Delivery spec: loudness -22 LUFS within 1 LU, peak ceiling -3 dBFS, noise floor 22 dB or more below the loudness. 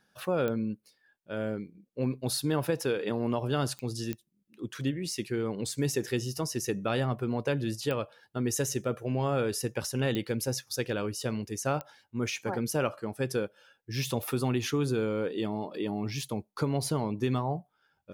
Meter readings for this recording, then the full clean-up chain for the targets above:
clicks 6; loudness -31.5 LUFS; peak -16.5 dBFS; loudness target -22.0 LUFS
-> de-click; gain +9.5 dB

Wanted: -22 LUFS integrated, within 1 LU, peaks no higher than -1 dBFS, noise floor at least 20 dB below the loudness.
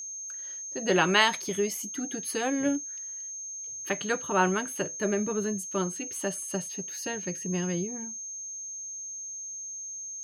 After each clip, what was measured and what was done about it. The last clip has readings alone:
steady tone 6400 Hz; tone level -36 dBFS; loudness -30.0 LUFS; peak -6.0 dBFS; loudness target -22.0 LUFS
-> notch 6400 Hz, Q 30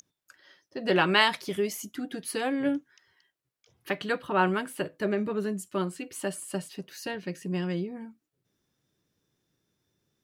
steady tone none; loudness -29.5 LUFS; peak -6.5 dBFS; loudness target -22.0 LUFS
-> gain +7.5 dB; limiter -1 dBFS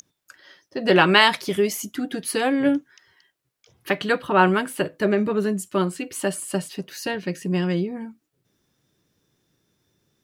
loudness -22.0 LUFS; peak -1.0 dBFS; noise floor -77 dBFS

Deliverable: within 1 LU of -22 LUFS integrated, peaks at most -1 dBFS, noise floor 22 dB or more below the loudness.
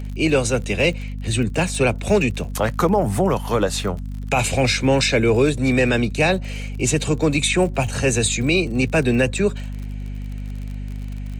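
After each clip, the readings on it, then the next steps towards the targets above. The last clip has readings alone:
ticks 45/s; hum 50 Hz; harmonics up to 250 Hz; hum level -26 dBFS; loudness -19.5 LUFS; peak -6.5 dBFS; loudness target -22.0 LUFS
-> de-click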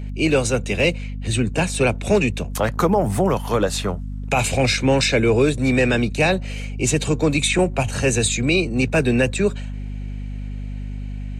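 ticks 0.088/s; hum 50 Hz; harmonics up to 250 Hz; hum level -26 dBFS
-> de-hum 50 Hz, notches 5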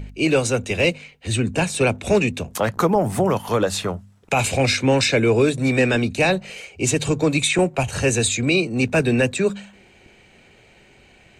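hum none; loudness -20.0 LUFS; peak -7.0 dBFS; loudness target -22.0 LUFS
-> gain -2 dB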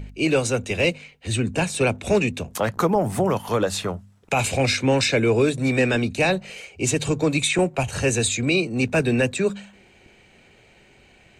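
loudness -22.0 LUFS; peak -9.0 dBFS; noise floor -54 dBFS

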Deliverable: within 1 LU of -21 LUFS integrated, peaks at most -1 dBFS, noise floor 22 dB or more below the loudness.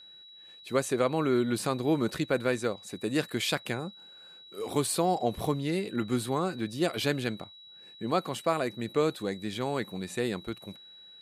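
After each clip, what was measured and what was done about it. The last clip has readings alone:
steady tone 3900 Hz; tone level -49 dBFS; loudness -30.5 LUFS; peak -13.5 dBFS; loudness target -21.0 LUFS
-> notch 3900 Hz, Q 30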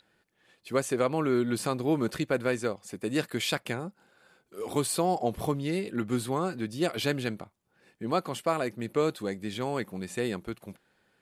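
steady tone none; loudness -30.5 LUFS; peak -14.0 dBFS; loudness target -21.0 LUFS
-> gain +9.5 dB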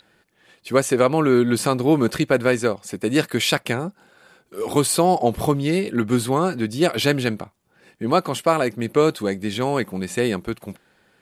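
loudness -21.0 LUFS; peak -4.5 dBFS; noise floor -62 dBFS

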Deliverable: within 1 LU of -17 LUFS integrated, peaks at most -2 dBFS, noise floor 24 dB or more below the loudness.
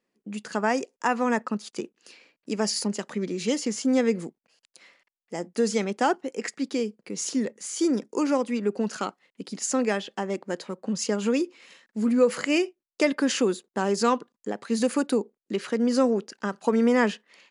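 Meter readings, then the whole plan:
loudness -26.5 LUFS; peak -9.0 dBFS; loudness target -17.0 LUFS
-> gain +9.5 dB; limiter -2 dBFS

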